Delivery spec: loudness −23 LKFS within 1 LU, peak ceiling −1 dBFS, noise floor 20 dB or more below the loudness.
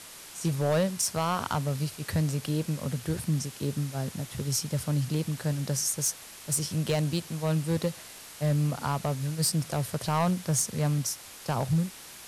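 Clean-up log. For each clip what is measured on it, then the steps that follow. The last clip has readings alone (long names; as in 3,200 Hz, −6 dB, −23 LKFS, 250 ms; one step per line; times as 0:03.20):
share of clipped samples 0.7%; peaks flattened at −19.5 dBFS; background noise floor −46 dBFS; target noise floor −49 dBFS; integrated loudness −29.0 LKFS; sample peak −19.5 dBFS; target loudness −23.0 LKFS
→ clipped peaks rebuilt −19.5 dBFS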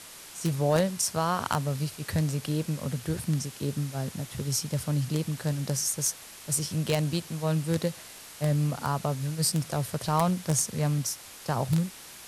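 share of clipped samples 0.0%; background noise floor −46 dBFS; target noise floor −49 dBFS
→ broadband denoise 6 dB, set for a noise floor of −46 dBFS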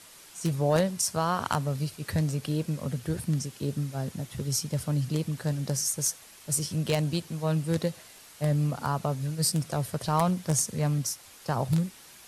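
background noise floor −51 dBFS; integrated loudness −29.0 LKFS; sample peak −10.5 dBFS; target loudness −23.0 LKFS
→ level +6 dB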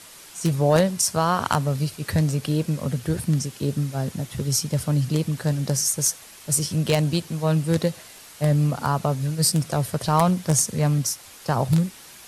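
integrated loudness −23.0 LKFS; sample peak −4.5 dBFS; background noise floor −45 dBFS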